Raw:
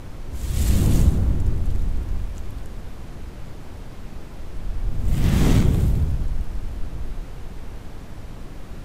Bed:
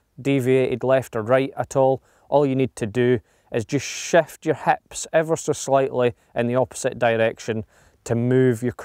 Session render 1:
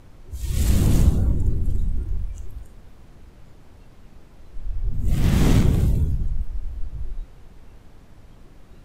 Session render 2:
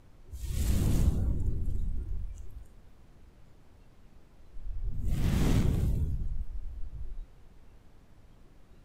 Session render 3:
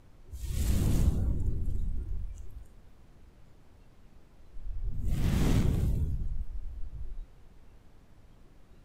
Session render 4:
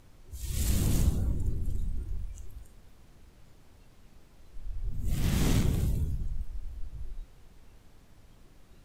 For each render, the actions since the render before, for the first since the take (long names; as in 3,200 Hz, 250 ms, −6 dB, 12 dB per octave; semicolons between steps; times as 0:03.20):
noise reduction from a noise print 11 dB
level −9.5 dB
no processing that can be heard
high-shelf EQ 2,700 Hz +7.5 dB